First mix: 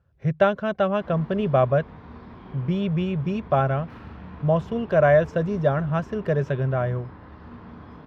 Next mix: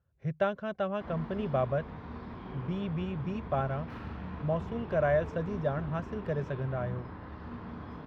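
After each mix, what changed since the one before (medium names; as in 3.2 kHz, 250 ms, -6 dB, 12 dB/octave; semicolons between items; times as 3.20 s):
speech -10.0 dB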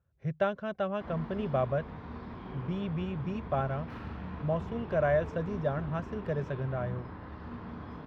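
no change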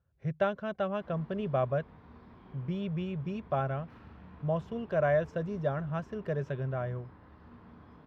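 background -11.0 dB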